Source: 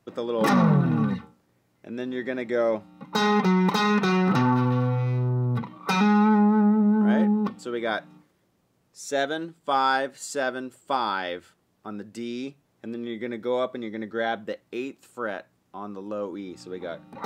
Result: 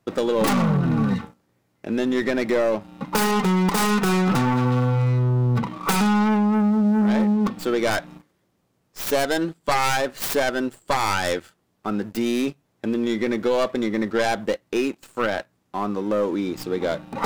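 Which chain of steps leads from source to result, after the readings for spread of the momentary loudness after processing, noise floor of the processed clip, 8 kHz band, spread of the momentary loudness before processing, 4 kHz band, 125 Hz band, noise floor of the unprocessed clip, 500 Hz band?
9 LU, -69 dBFS, +9.5 dB, 18 LU, +4.0 dB, +3.0 dB, -69 dBFS, +4.5 dB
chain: tracing distortion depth 0.5 ms; compressor, threshold -27 dBFS, peak gain reduction 11 dB; sample leveller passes 2; gain +3.5 dB

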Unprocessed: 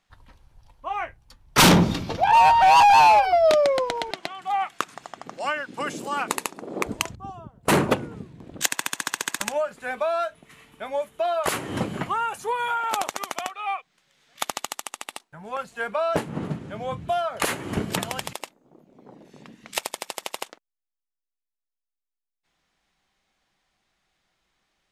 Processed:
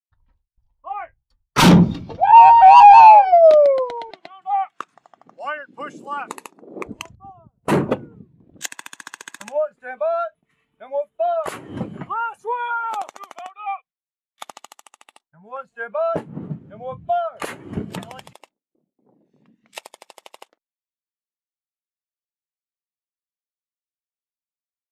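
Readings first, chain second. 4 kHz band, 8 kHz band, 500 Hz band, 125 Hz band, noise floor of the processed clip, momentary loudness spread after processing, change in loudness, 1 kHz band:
-3.5 dB, -6.5 dB, +5.5 dB, +5.5 dB, under -85 dBFS, 25 LU, +9.5 dB, +7.5 dB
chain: gate with hold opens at -42 dBFS; spectral expander 1.5:1; gain +3.5 dB

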